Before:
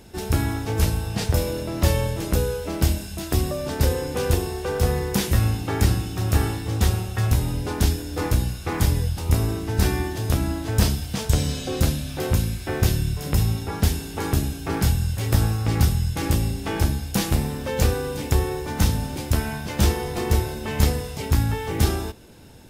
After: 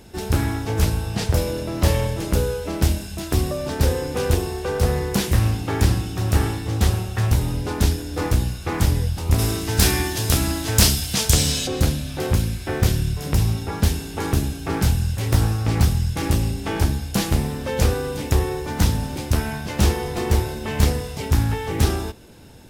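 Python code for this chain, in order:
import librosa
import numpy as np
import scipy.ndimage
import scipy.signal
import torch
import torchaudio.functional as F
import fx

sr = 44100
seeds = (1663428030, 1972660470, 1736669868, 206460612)

y = fx.high_shelf(x, sr, hz=2200.0, db=12.0, at=(9.38, 11.66), fade=0.02)
y = fx.doppler_dist(y, sr, depth_ms=0.36)
y = y * 10.0 ** (1.5 / 20.0)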